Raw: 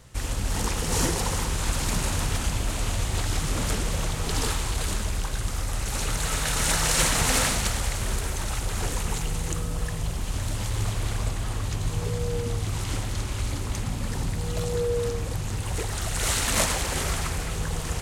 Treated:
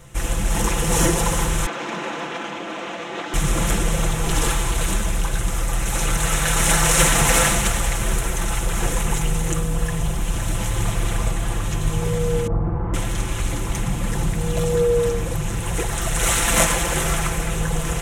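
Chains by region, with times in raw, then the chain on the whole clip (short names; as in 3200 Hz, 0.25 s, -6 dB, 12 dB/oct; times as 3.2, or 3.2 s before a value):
1.66–3.34 HPF 250 Hz 24 dB/oct + air absorption 210 m
12.47–12.94 LPF 1200 Hz 24 dB/oct + flutter echo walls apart 7.8 m, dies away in 0.7 s
whole clip: bell 4600 Hz -12 dB 0.38 oct; comb 5.9 ms; gain +5.5 dB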